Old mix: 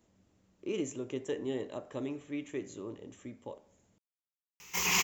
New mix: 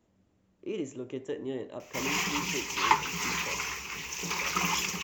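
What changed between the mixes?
background: entry -2.80 s; master: add treble shelf 5 kHz -8.5 dB

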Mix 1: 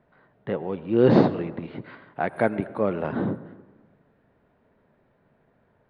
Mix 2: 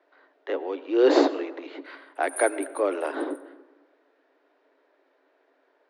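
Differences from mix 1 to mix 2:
speech: add Chebyshev high-pass 270 Hz, order 10; master: remove distance through air 260 m

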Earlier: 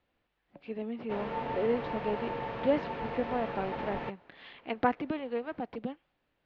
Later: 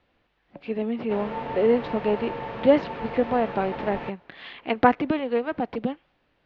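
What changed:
speech +9.5 dB; background +3.0 dB

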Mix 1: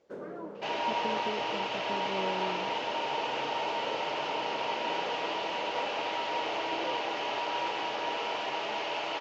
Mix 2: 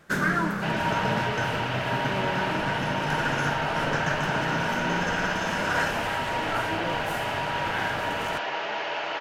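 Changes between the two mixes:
first sound: remove band-pass filter 500 Hz, Q 3.6; master: add fifteen-band graphic EQ 160 Hz +6 dB, 630 Hz +3 dB, 1.6 kHz +11 dB

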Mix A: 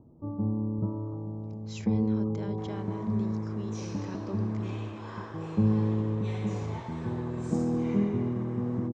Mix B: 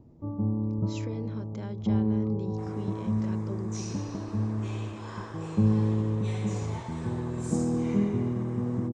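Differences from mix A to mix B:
speech: entry -0.80 s; first sound: add bass shelf 77 Hz +6.5 dB; second sound: remove distance through air 110 m

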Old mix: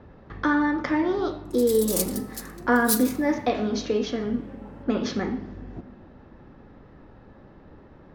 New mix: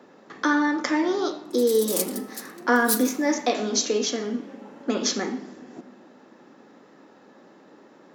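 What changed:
speech: remove distance through air 250 m; master: add high-pass 220 Hz 24 dB/octave

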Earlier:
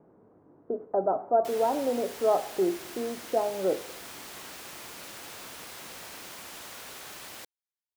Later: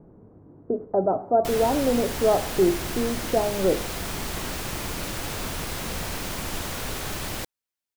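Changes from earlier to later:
background +9.5 dB; master: remove high-pass 650 Hz 6 dB/octave

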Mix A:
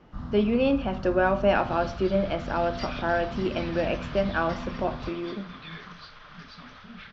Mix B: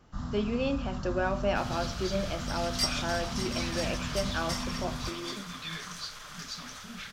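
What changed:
speech -8.0 dB; second sound: remove Savitzky-Golay filter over 15 samples; master: remove distance through air 230 m

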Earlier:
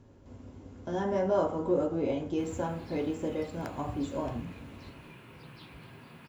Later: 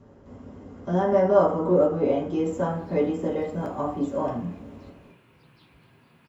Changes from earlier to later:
speech: send +10.5 dB; background -7.0 dB

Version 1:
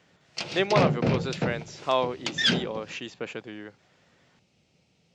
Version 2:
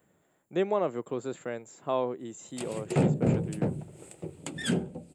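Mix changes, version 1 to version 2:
background: entry +2.20 s; master: add FFT filter 350 Hz 0 dB, 5.8 kHz -18 dB, 8.2 kHz +15 dB

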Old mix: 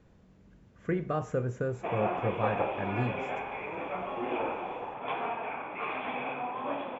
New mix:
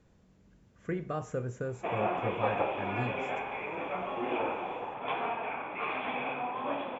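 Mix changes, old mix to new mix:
speech -4.0 dB; master: add treble shelf 6.4 kHz +11.5 dB

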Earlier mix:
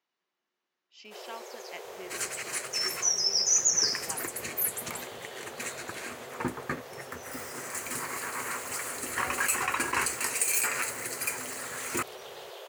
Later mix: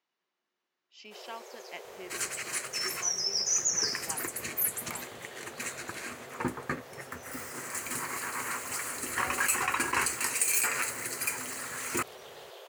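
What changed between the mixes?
first sound -5.5 dB; reverb: on, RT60 0.95 s

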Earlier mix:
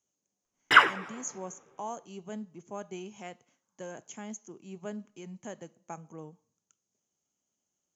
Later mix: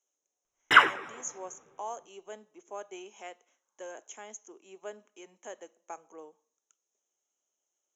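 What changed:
speech: add high-pass 370 Hz 24 dB/octave; master: add Butterworth band-stop 4.6 kHz, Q 4.5

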